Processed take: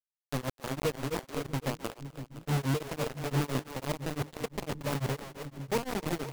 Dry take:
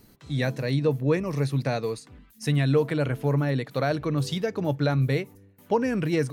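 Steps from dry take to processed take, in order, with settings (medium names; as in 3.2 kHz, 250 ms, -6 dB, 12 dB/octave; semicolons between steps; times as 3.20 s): median filter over 41 samples; treble shelf 4.5 kHz +4.5 dB; bit crusher 4-bit; on a send: two-band feedback delay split 320 Hz, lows 642 ms, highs 257 ms, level -10 dB; on the sum: tremolo of two beating tones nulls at 5.9 Hz; trim -6 dB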